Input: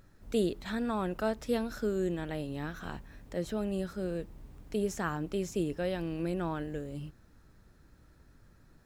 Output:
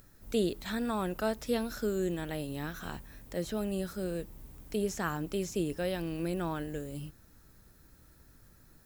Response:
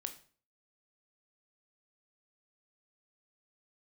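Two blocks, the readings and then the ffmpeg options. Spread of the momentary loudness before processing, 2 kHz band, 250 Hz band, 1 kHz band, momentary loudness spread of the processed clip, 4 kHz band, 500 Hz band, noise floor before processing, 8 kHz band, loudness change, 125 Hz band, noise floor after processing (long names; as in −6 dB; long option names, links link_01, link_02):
11 LU, +0.5 dB, −0.5 dB, 0.0 dB, 10 LU, +3.0 dB, −0.5 dB, −61 dBFS, +3.5 dB, 0.0 dB, −0.5 dB, −60 dBFS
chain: -filter_complex "[0:a]acrossover=split=6100[link_01][link_02];[link_02]acompressor=threshold=-59dB:ratio=4:attack=1:release=60[link_03];[link_01][link_03]amix=inputs=2:normalize=0,aemphasis=mode=production:type=50fm"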